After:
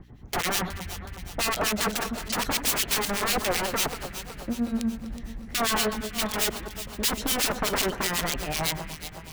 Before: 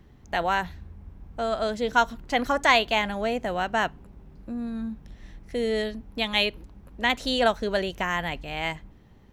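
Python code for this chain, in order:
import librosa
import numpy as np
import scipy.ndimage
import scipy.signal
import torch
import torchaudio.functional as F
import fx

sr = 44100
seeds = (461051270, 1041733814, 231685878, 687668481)

y = (np.mod(10.0 ** (23.5 / 20.0) * x + 1.0, 2.0) - 1.0) / 10.0 ** (23.5 / 20.0)
y = fx.harmonic_tremolo(y, sr, hz=8.0, depth_pct=100, crossover_hz=1800.0)
y = fx.add_hum(y, sr, base_hz=60, snr_db=24)
y = fx.echo_alternate(y, sr, ms=185, hz=1800.0, feedback_pct=72, wet_db=-8.5)
y = F.gain(torch.from_numpy(y), 7.5).numpy()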